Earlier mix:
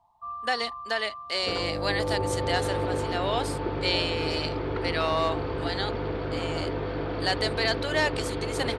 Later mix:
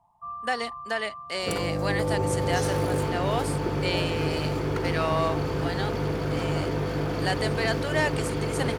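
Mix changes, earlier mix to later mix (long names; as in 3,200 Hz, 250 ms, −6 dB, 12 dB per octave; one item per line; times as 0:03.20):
second sound: remove high-frequency loss of the air 350 metres
master: add graphic EQ with 15 bands 160 Hz +11 dB, 4,000 Hz −8 dB, 10,000 Hz +4 dB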